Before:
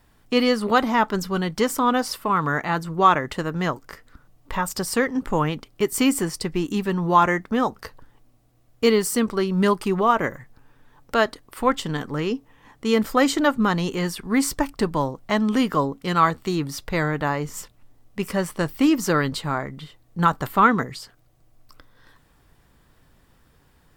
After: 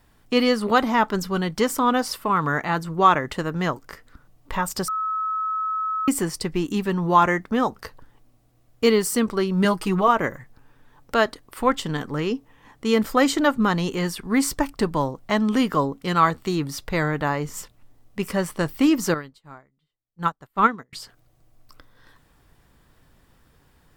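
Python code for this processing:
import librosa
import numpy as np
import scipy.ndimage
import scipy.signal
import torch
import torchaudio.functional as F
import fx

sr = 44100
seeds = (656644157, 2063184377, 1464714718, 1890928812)

y = fx.comb(x, sr, ms=6.3, depth=0.65, at=(9.64, 10.08))
y = fx.upward_expand(y, sr, threshold_db=-35.0, expansion=2.5, at=(19.14, 20.93))
y = fx.edit(y, sr, fx.bleep(start_s=4.88, length_s=1.2, hz=1290.0, db=-22.5), tone=tone)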